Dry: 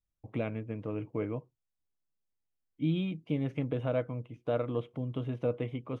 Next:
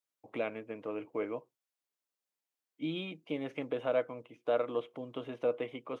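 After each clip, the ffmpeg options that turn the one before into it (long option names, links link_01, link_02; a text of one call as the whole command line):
ffmpeg -i in.wav -af "highpass=410,volume=2.5dB" out.wav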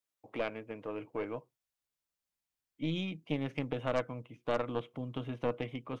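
ffmpeg -i in.wav -af "asubboost=boost=6.5:cutoff=170,aeval=exprs='0.106*(cos(1*acos(clip(val(0)/0.106,-1,1)))-cos(1*PI/2))+0.0266*(cos(4*acos(clip(val(0)/0.106,-1,1)))-cos(4*PI/2))+0.00944*(cos(6*acos(clip(val(0)/0.106,-1,1)))-cos(6*PI/2))':channel_layout=same" out.wav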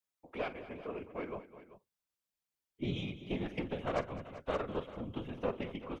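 ffmpeg -i in.wav -filter_complex "[0:a]afftfilt=real='hypot(re,im)*cos(2*PI*random(0))':imag='hypot(re,im)*sin(2*PI*random(1))':win_size=512:overlap=0.75,asplit=2[link_01][link_02];[link_02]aecho=0:1:45|208|389:0.168|0.178|0.168[link_03];[link_01][link_03]amix=inputs=2:normalize=0,volume=3.5dB" out.wav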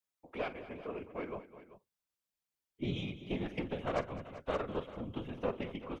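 ffmpeg -i in.wav -af anull out.wav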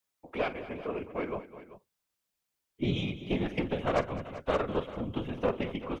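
ffmpeg -i in.wav -af "asoftclip=type=hard:threshold=-24dB,volume=6.5dB" out.wav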